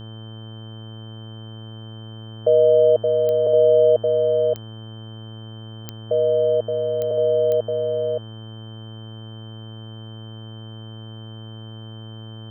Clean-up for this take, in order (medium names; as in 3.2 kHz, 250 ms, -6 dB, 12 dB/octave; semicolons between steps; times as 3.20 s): de-click; de-hum 110.8 Hz, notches 16; band-stop 3.1 kHz, Q 30; inverse comb 572 ms -4.5 dB